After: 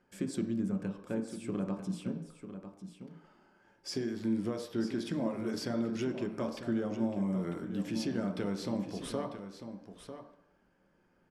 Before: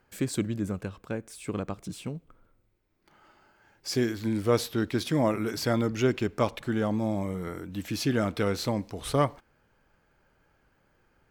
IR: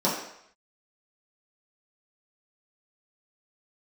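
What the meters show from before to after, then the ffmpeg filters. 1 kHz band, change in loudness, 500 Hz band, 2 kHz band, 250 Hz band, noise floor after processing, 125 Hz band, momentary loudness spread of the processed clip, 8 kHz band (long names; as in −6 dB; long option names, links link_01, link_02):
−11.5 dB, −6.0 dB, −8.0 dB, −10.5 dB, −3.5 dB, −70 dBFS, −8.5 dB, 14 LU, −9.5 dB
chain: -filter_complex "[0:a]lowpass=frequency=11000:width=0.5412,lowpass=frequency=11000:width=1.3066,acompressor=threshold=-29dB:ratio=6,aecho=1:1:947:0.299,asplit=2[link_01][link_02];[1:a]atrim=start_sample=2205,lowpass=4600,lowshelf=frequency=160:gain=9[link_03];[link_02][link_03]afir=irnorm=-1:irlink=0,volume=-16dB[link_04];[link_01][link_04]amix=inputs=2:normalize=0,volume=-7.5dB"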